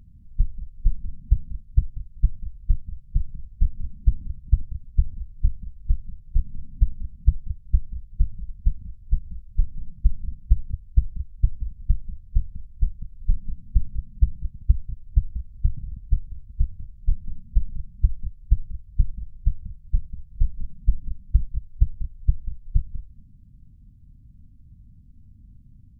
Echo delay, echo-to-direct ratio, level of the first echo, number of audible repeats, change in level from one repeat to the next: 220 ms, -22.0 dB, -22.0 dB, 1, no regular repeats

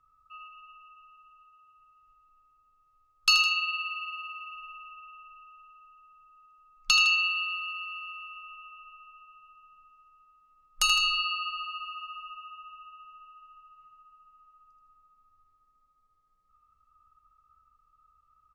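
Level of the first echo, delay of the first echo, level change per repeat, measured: -7.0 dB, 80 ms, -5.0 dB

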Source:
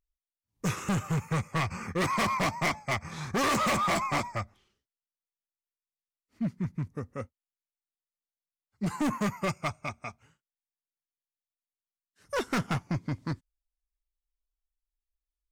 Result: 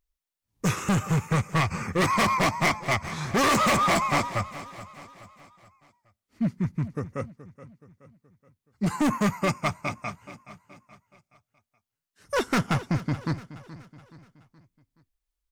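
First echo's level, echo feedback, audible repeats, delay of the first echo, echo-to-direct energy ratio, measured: -16.0 dB, 46%, 3, 424 ms, -15.0 dB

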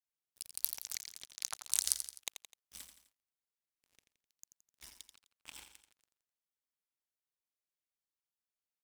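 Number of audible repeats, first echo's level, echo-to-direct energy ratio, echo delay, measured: 3, -9.0 dB, -8.0 dB, 85 ms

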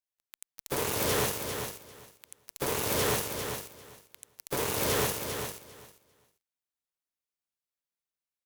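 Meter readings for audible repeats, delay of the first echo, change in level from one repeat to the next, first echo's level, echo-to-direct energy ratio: 2, 398 ms, -16.0 dB, -7.0 dB, -7.0 dB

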